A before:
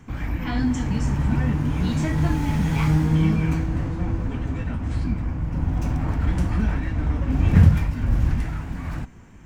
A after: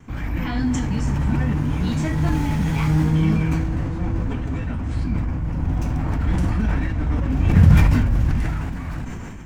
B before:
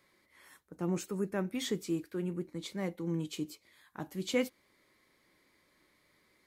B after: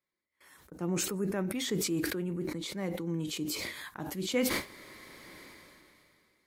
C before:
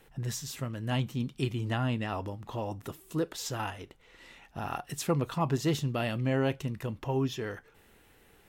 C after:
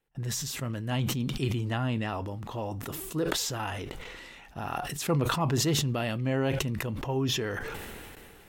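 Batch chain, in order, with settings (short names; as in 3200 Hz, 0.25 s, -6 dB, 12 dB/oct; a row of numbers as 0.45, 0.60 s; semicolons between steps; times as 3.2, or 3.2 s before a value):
gate with hold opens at -49 dBFS; sustainer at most 23 dB/s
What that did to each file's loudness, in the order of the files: +2.0, +3.0, +2.5 LU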